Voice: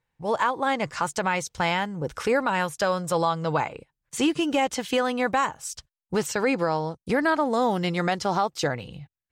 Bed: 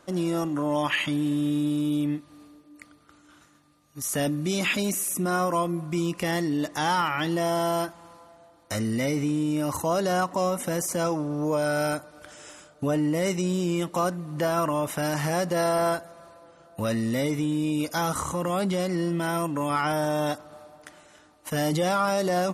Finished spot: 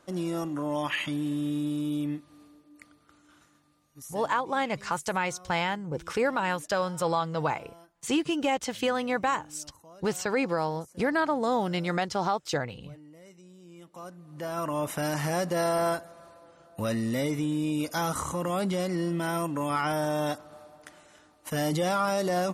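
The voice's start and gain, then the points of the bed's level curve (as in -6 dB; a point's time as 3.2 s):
3.90 s, -3.5 dB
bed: 3.84 s -4.5 dB
4.35 s -26.5 dB
13.58 s -26.5 dB
14.83 s -2.5 dB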